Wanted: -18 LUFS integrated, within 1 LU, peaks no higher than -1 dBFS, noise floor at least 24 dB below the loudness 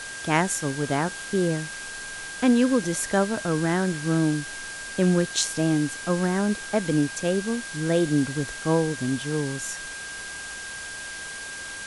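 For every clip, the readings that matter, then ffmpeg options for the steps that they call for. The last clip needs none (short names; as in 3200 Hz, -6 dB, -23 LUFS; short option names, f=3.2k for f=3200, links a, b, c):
steady tone 1600 Hz; tone level -36 dBFS; noise floor -36 dBFS; noise floor target -50 dBFS; loudness -25.5 LUFS; peak -6.5 dBFS; loudness target -18.0 LUFS
-> -af "bandreject=f=1.6k:w=30"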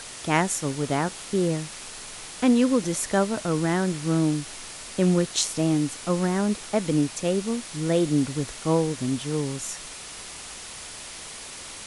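steady tone none; noise floor -40 dBFS; noise floor target -49 dBFS
-> -af "afftdn=nr=9:nf=-40"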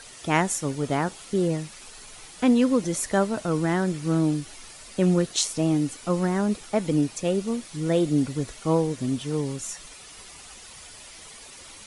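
noise floor -45 dBFS; noise floor target -49 dBFS
-> -af "afftdn=nr=6:nf=-45"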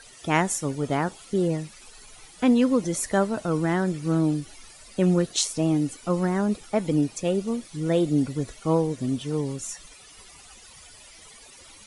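noise floor -49 dBFS; loudness -25.0 LUFS; peak -7.0 dBFS; loudness target -18.0 LUFS
-> -af "volume=7dB,alimiter=limit=-1dB:level=0:latency=1"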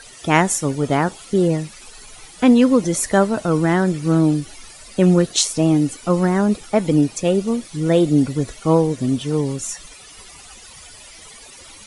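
loudness -18.0 LUFS; peak -1.0 dBFS; noise floor -42 dBFS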